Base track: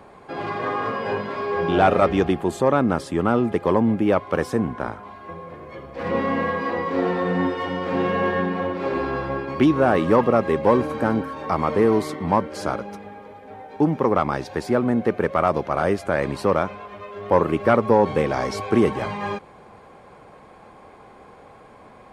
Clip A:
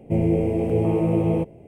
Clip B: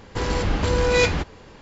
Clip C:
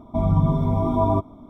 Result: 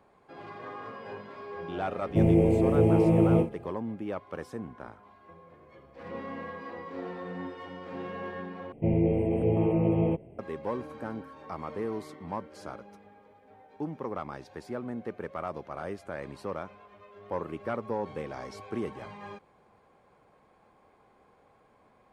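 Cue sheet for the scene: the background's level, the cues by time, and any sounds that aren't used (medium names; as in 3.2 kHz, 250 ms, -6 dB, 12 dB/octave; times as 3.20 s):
base track -16 dB
2.05 s: add A -1 dB + endings held to a fixed fall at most 240 dB/s
8.72 s: replace with A -4.5 dB + spectral gate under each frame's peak -50 dB strong
not used: B, C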